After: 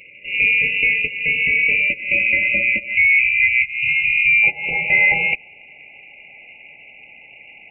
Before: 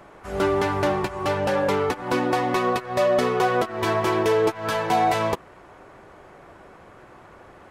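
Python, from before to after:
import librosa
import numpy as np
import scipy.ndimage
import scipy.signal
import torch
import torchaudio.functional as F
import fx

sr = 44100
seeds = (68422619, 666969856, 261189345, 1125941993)

y = fx.freq_invert(x, sr, carrier_hz=2800)
y = fx.brickwall_bandstop(y, sr, low_hz=fx.steps((0.0, 610.0), (2.94, 150.0), (4.42, 890.0)), high_hz=2000.0)
y = y * librosa.db_to_amplitude(6.0)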